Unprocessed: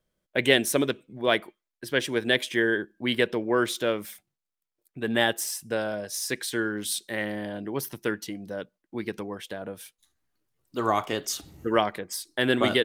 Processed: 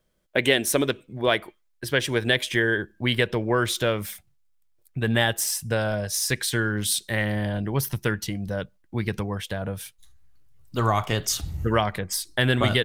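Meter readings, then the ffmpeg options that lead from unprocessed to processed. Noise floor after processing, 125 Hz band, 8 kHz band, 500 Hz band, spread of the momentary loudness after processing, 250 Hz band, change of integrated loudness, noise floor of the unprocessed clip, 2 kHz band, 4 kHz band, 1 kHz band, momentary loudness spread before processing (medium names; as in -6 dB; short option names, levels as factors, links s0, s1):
-64 dBFS, +12.5 dB, +5.0 dB, +1.0 dB, 10 LU, +1.5 dB, +2.5 dB, under -85 dBFS, +2.5 dB, +2.5 dB, +1.5 dB, 13 LU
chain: -af "asubboost=boost=11:cutoff=91,acompressor=threshold=0.0501:ratio=2,volume=2"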